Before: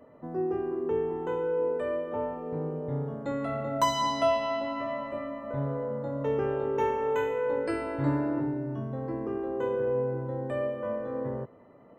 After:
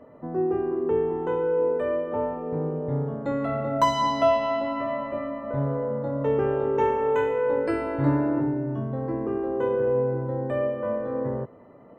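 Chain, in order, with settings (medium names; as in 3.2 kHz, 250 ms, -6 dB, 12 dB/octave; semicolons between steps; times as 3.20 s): treble shelf 4.1 kHz -11.5 dB; trim +5 dB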